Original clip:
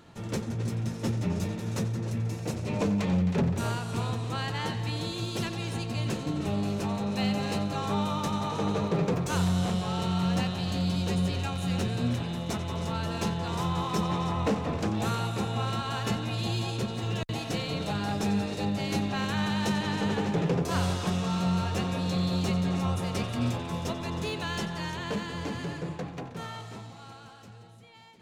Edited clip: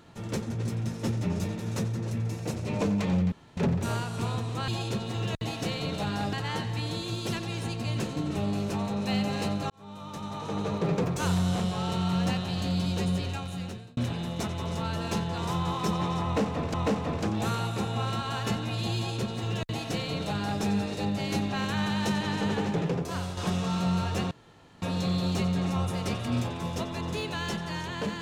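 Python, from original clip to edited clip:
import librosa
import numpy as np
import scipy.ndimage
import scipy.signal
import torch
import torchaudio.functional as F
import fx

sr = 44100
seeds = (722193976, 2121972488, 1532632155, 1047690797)

y = fx.edit(x, sr, fx.insert_room_tone(at_s=3.32, length_s=0.25),
    fx.fade_in_span(start_s=7.8, length_s=1.24),
    fx.fade_out_span(start_s=10.94, length_s=1.13, curve='qsin'),
    fx.repeat(start_s=14.34, length_s=0.5, count=2),
    fx.duplicate(start_s=16.56, length_s=1.65, to_s=4.43),
    fx.fade_out_to(start_s=20.25, length_s=0.72, floor_db=-8.5),
    fx.insert_room_tone(at_s=21.91, length_s=0.51), tone=tone)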